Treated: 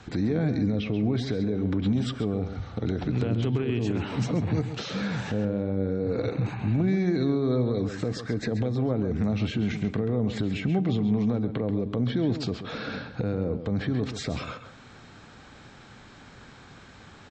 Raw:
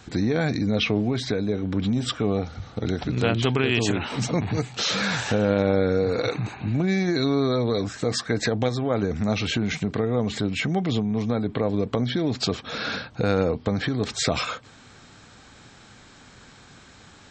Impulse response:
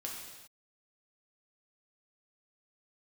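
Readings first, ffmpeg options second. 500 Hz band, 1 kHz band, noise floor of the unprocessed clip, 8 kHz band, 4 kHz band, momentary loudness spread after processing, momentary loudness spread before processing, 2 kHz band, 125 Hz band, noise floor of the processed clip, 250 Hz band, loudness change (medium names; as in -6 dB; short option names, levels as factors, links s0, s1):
-5.5 dB, -8.0 dB, -50 dBFS, under -10 dB, -10.5 dB, 7 LU, 6 LU, -9.0 dB, -0.5 dB, -49 dBFS, -1.5 dB, -3.0 dB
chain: -filter_complex "[0:a]aemphasis=mode=reproduction:type=50fm,acrossover=split=440[s0][s1];[s1]acompressor=threshold=0.0158:ratio=6[s2];[s0][s2]amix=inputs=2:normalize=0,alimiter=limit=0.126:level=0:latency=1:release=79,asplit=2[s3][s4];[s4]adelay=134.1,volume=0.316,highshelf=f=4000:g=-3.02[s5];[s3][s5]amix=inputs=2:normalize=0,asplit=2[s6][s7];[1:a]atrim=start_sample=2205[s8];[s7][s8]afir=irnorm=-1:irlink=0,volume=0.106[s9];[s6][s9]amix=inputs=2:normalize=0"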